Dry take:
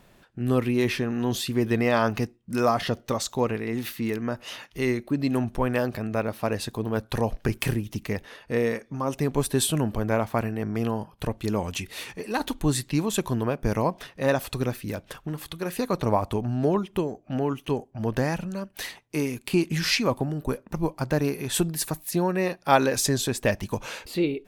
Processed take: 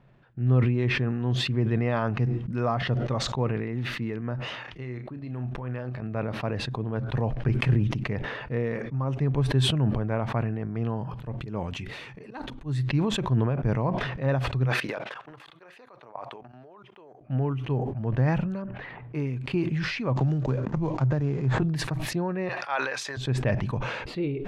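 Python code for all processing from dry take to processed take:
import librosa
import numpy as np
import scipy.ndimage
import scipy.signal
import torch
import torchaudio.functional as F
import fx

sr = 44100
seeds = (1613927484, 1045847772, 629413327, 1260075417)

y = fx.chain(x, sr, fx.low_shelf(hz=280.0, db=-6.0),
    fx.level_steps(step_db=11),
    fx.doubler(ms=32.0, db=-10.5), at=(4.55, 6.02))
y = fx.chain(y, sr, fx.high_shelf(hz=6700.0, db=8.0),
    fx.auto_swell(attack_ms=134.0), at=(10.85, 12.83))
y = fx.chain(y, sr, fx.highpass(hz=620.0, slope=12),
    fx.level_steps(step_db=22), at=(14.65, 17.21))
y = fx.chain(y, sr, fx.lowpass(hz=1900.0, slope=12),
    fx.env_flatten(amount_pct=70), at=(18.62, 19.15))
y = fx.chain(y, sr, fx.median_filter(points=15),
    fx.lowpass_res(hz=6900.0, q=4.1),
    fx.band_squash(depth_pct=100), at=(20.16, 21.62))
y = fx.chain(y, sr, fx.highpass(hz=1000.0, slope=12),
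    fx.sustainer(db_per_s=91.0), at=(22.49, 23.17))
y = scipy.signal.sosfilt(scipy.signal.butter(2, 2400.0, 'lowpass', fs=sr, output='sos'), y)
y = fx.peak_eq(y, sr, hz=130.0, db=14.0, octaves=0.4)
y = fx.sustainer(y, sr, db_per_s=35.0)
y = y * librosa.db_to_amplitude(-6.0)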